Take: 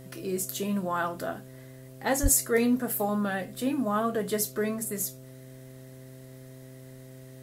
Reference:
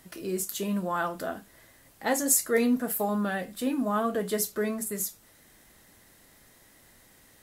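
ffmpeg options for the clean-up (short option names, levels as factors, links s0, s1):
-filter_complex "[0:a]bandreject=f=130.1:t=h:w=4,bandreject=f=260.2:t=h:w=4,bandreject=f=390.3:t=h:w=4,bandreject=f=520.4:t=h:w=4,bandreject=f=650.5:t=h:w=4,asplit=3[s0][s1][s2];[s0]afade=t=out:st=2.22:d=0.02[s3];[s1]highpass=f=140:w=0.5412,highpass=f=140:w=1.3066,afade=t=in:st=2.22:d=0.02,afade=t=out:st=2.34:d=0.02[s4];[s2]afade=t=in:st=2.34:d=0.02[s5];[s3][s4][s5]amix=inputs=3:normalize=0"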